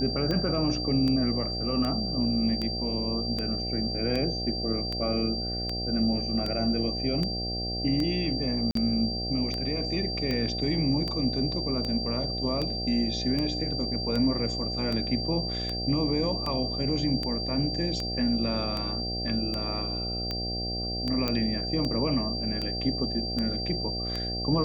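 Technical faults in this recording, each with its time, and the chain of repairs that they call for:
buzz 60 Hz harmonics 13 -34 dBFS
tick 78 rpm -18 dBFS
whine 4.7 kHz -32 dBFS
8.71–8.75 s: dropout 43 ms
21.28 s: pop -13 dBFS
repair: de-click; de-hum 60 Hz, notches 13; band-stop 4.7 kHz, Q 30; interpolate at 8.71 s, 43 ms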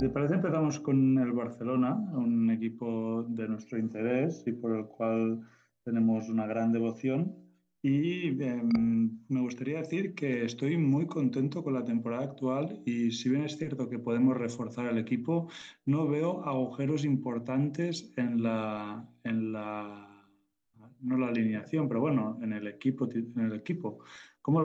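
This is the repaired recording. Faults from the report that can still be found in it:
21.28 s: pop

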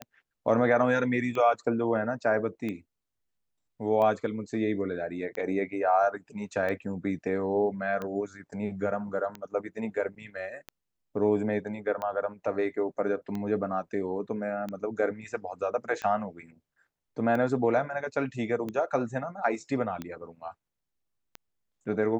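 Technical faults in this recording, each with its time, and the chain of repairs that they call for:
tick 45 rpm -22 dBFS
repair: de-click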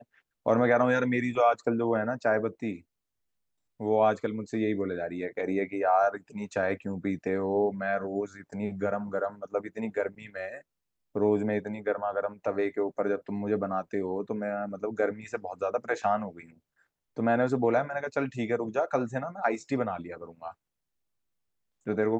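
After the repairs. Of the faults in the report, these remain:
nothing left

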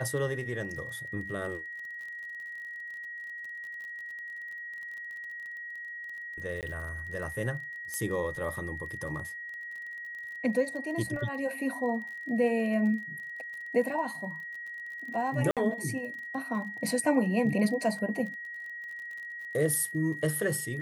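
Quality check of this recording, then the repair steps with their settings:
crackle 36 per s -40 dBFS
whine 1.9 kHz -38 dBFS
6.61–6.63 s: dropout 18 ms
7.94 s: pop -20 dBFS
15.51–15.57 s: dropout 57 ms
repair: de-click; band-stop 1.9 kHz, Q 30; interpolate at 6.61 s, 18 ms; interpolate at 15.51 s, 57 ms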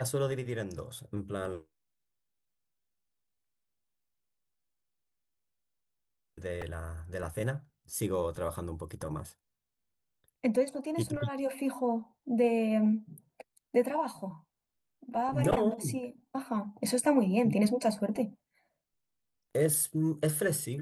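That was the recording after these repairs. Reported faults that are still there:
nothing left

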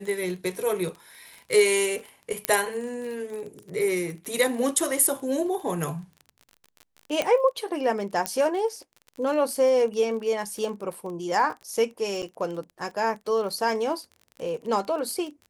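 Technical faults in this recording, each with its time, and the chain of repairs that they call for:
crackle 31 per s -34 dBFS
2.45 s: pop -6 dBFS
7.22 s: pop -11 dBFS
8.26 s: pop -9 dBFS
12.22–12.23 s: dropout 8 ms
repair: de-click; interpolate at 12.22 s, 8 ms

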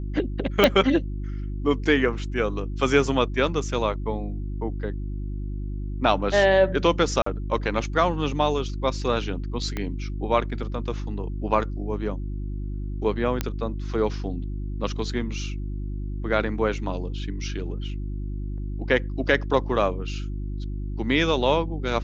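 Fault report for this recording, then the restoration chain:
hum 50 Hz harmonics 7 -30 dBFS
0.64 s: pop -3 dBFS
7.22–7.26 s: dropout 44 ms
9.77 s: pop -15 dBFS
13.41 s: pop -10 dBFS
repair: de-click; de-hum 50 Hz, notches 7; interpolate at 7.22 s, 44 ms

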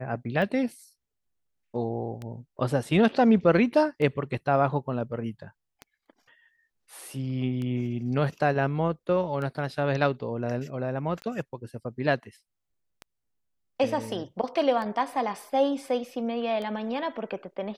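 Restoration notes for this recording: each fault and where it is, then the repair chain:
tick 33 1/3 rpm -23 dBFS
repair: de-click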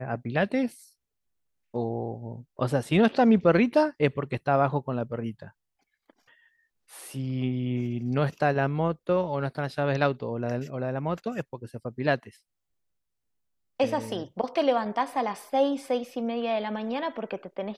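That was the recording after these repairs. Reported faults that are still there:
nothing left

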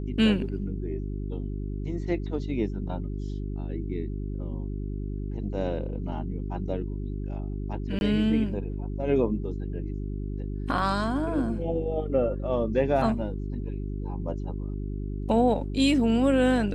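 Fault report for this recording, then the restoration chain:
hum 50 Hz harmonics 8 -32 dBFS
7.99–8.01 s: dropout 21 ms
10.79 s: dropout 2.5 ms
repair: de-hum 50 Hz, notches 8; interpolate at 7.99 s, 21 ms; interpolate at 10.79 s, 2.5 ms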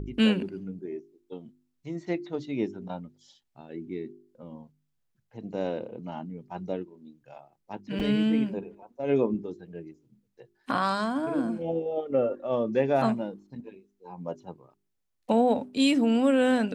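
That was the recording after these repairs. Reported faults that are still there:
nothing left

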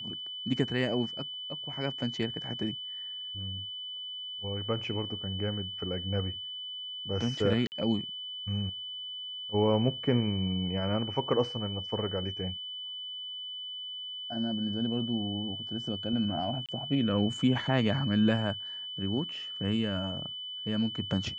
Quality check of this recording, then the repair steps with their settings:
whine 3 kHz -37 dBFS
7.67–7.72 s: dropout 49 ms
16.66–16.69 s: dropout 27 ms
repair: band-stop 3 kHz, Q 30; interpolate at 7.67 s, 49 ms; interpolate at 16.66 s, 27 ms

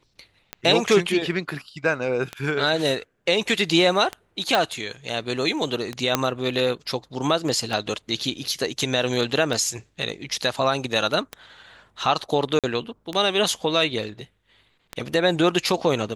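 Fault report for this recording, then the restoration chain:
tick 33 1/3 rpm -13 dBFS
4.55 s: pop
6.15 s: pop -3 dBFS
12.59–12.64 s: dropout 47 ms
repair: de-click; interpolate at 12.59 s, 47 ms

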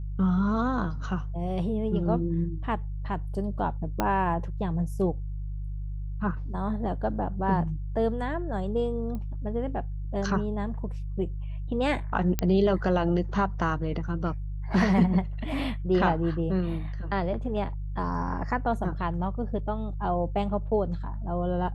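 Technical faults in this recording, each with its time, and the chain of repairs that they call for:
hum 50 Hz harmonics 3 -33 dBFS
4.00 s: pop -11 dBFS
9.15 s: pop -25 dBFS
12.39 s: pop -10 dBFS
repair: de-click; de-hum 50 Hz, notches 3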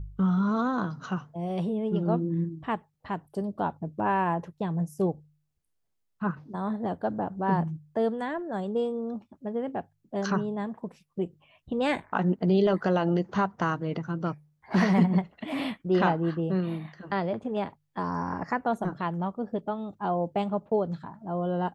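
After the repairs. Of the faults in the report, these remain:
4.00 s: pop

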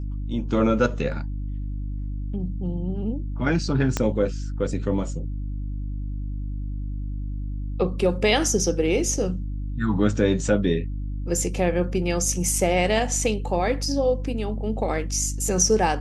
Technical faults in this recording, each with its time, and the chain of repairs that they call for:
hum 50 Hz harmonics 6 -29 dBFS
3.97 s: pop -8 dBFS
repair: de-click; de-hum 50 Hz, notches 6

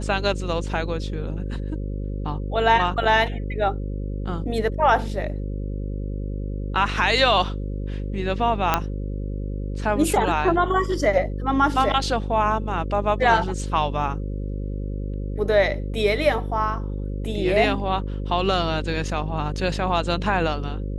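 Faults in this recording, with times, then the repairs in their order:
buzz 50 Hz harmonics 11 -28 dBFS
8.74 s: pop -4 dBFS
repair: de-click; de-hum 50 Hz, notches 11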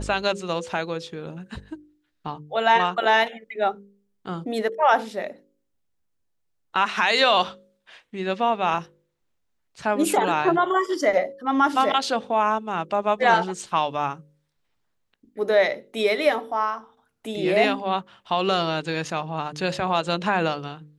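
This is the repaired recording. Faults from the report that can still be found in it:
nothing left

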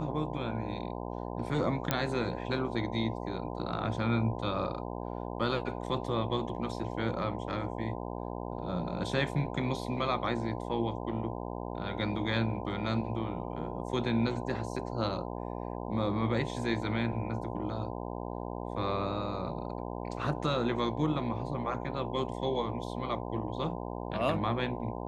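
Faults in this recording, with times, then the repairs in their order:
buzz 60 Hz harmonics 17 -38 dBFS
1.91 s: pop -11 dBFS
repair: de-click; de-hum 60 Hz, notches 17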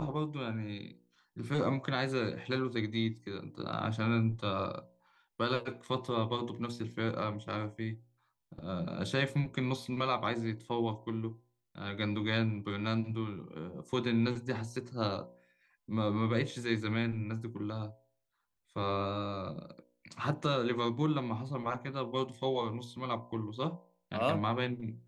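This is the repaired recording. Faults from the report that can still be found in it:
nothing left

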